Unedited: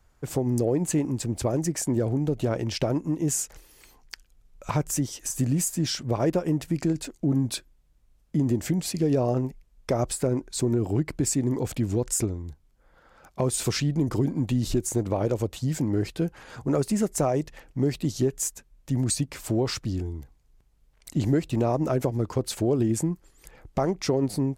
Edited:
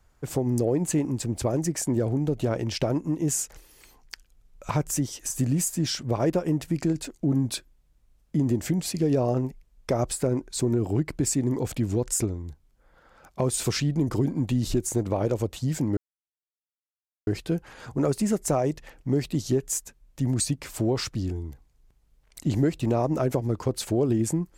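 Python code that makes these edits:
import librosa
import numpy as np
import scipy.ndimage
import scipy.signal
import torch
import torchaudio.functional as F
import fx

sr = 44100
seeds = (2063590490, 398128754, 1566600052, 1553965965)

y = fx.edit(x, sr, fx.insert_silence(at_s=15.97, length_s=1.3), tone=tone)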